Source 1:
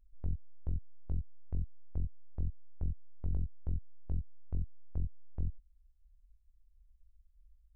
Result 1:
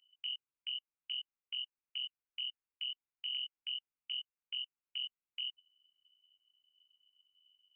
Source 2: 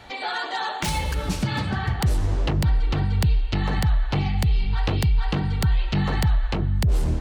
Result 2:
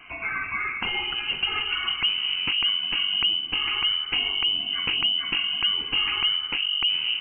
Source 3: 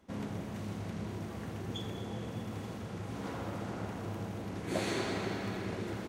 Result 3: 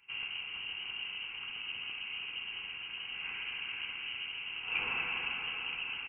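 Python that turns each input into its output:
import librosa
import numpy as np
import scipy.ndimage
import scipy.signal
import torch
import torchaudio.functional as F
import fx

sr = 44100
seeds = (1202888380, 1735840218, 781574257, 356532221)

y = fx.notch_comb(x, sr, f0_hz=1200.0)
y = fx.freq_invert(y, sr, carrier_hz=3000)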